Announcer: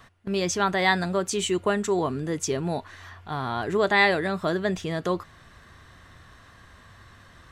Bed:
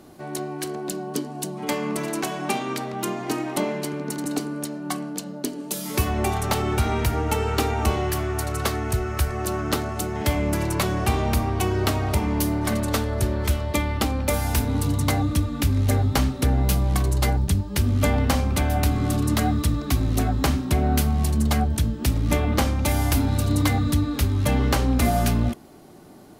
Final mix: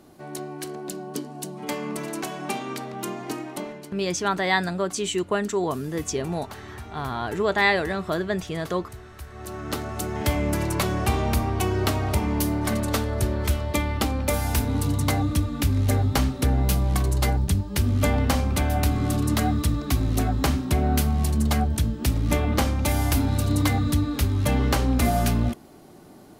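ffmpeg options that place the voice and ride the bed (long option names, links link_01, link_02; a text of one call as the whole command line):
ffmpeg -i stem1.wav -i stem2.wav -filter_complex "[0:a]adelay=3650,volume=-0.5dB[link_01];[1:a]volume=12.5dB,afade=type=out:start_time=3.21:duration=0.78:silence=0.211349,afade=type=in:start_time=9.27:duration=0.87:silence=0.149624[link_02];[link_01][link_02]amix=inputs=2:normalize=0" out.wav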